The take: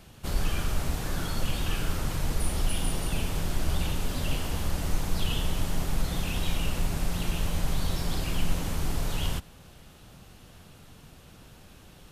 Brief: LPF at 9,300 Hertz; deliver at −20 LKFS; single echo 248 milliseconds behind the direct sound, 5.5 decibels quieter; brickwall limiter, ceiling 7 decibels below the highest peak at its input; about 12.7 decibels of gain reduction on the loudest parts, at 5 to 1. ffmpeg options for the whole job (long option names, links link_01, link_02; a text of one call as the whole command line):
ffmpeg -i in.wav -af "lowpass=9300,acompressor=threshold=-34dB:ratio=5,alimiter=level_in=7.5dB:limit=-24dB:level=0:latency=1,volume=-7.5dB,aecho=1:1:248:0.531,volume=24dB" out.wav